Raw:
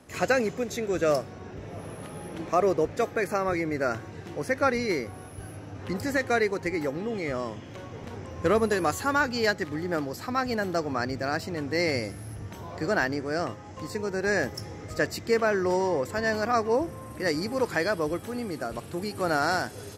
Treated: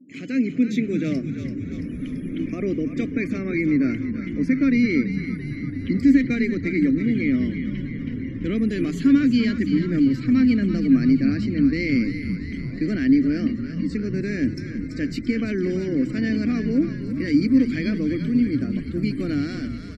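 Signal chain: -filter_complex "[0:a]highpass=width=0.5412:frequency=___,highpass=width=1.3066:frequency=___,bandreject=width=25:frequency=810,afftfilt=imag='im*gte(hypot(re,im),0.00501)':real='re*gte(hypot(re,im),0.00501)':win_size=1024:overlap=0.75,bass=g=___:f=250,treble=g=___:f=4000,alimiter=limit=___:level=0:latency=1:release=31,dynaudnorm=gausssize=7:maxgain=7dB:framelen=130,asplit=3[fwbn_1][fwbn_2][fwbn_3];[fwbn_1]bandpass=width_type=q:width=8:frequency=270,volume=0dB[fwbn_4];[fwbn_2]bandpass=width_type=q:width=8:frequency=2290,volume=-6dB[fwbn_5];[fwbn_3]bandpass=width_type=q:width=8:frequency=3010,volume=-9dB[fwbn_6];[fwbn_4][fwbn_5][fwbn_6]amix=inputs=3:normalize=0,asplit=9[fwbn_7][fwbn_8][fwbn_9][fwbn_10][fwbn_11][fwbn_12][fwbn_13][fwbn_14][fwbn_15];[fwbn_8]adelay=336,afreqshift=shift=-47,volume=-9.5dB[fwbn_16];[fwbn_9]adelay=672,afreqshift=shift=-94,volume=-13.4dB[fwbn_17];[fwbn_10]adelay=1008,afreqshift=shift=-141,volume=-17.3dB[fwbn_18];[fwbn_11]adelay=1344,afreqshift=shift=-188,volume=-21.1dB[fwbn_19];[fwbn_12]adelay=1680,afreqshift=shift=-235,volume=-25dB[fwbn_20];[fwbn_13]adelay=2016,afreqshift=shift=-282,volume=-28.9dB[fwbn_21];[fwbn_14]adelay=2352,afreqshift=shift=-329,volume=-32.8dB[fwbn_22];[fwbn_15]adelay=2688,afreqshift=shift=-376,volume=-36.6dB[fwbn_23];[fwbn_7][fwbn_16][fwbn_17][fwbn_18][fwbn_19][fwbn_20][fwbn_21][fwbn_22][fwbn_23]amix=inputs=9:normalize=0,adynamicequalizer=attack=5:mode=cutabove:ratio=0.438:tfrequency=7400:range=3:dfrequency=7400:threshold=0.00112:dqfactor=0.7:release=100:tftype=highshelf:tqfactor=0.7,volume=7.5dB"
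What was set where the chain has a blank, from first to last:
130, 130, 14, 6, -15.5dB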